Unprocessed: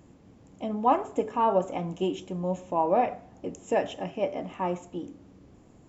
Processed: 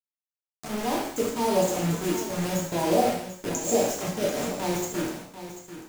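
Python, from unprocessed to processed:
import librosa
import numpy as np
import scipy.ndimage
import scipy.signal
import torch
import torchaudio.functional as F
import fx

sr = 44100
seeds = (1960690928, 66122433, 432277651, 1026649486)

y = fx.fade_in_head(x, sr, length_s=1.58)
y = fx.curve_eq(y, sr, hz=(290.0, 2900.0, 5900.0), db=(0, -19, 14))
y = fx.transient(y, sr, attack_db=-9, sustain_db=-5, at=(1.95, 2.46))
y = fx.quant_dither(y, sr, seeds[0], bits=6, dither='none')
y = y + 10.0 ** (-12.0 / 20.0) * np.pad(y, (int(741 * sr / 1000.0), 0))[:len(y)]
y = fx.rev_gated(y, sr, seeds[1], gate_ms=270, shape='falling', drr_db=-3.5)
y = y * librosa.db_to_amplitude(1.0)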